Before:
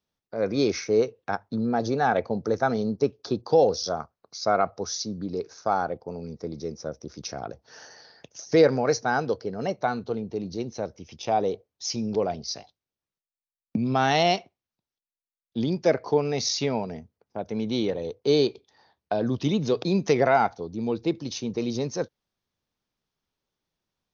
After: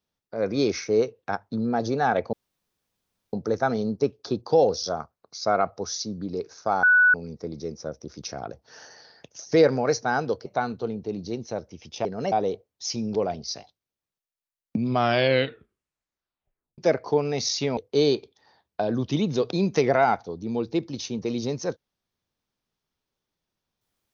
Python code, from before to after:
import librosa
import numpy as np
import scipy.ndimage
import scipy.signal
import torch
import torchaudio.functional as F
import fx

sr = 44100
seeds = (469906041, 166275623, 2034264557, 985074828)

y = fx.edit(x, sr, fx.insert_room_tone(at_s=2.33, length_s=1.0),
    fx.bleep(start_s=5.83, length_s=0.31, hz=1480.0, db=-13.5),
    fx.move(start_s=9.46, length_s=0.27, to_s=11.32),
    fx.tape_stop(start_s=13.85, length_s=1.93),
    fx.cut(start_s=16.77, length_s=1.32), tone=tone)